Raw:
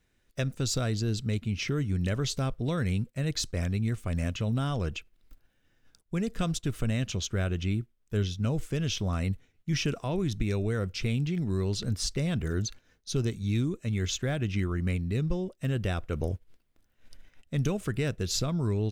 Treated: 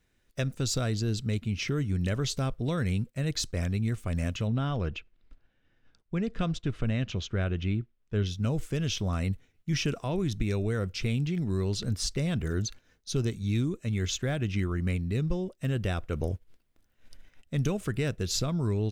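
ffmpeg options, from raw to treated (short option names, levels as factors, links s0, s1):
-filter_complex "[0:a]asettb=1/sr,asplit=3[s0][s1][s2];[s0]atrim=end=4.474[s3];[s1]atrim=start=4.47:end=8.26,asetpts=PTS-STARTPTS,afade=t=in:d=0.004:c=qsin,afade=t=out:st=3.786:d=0.004:c=qsin,lowpass=3700[s4];[s2]atrim=start=8.256[s5];[s3][s4]acrossfade=d=0.004:c1=hsin:c2=qsin[s6];[s6][s5]acrossfade=d=0.004:c1=qsin:c2=hsin"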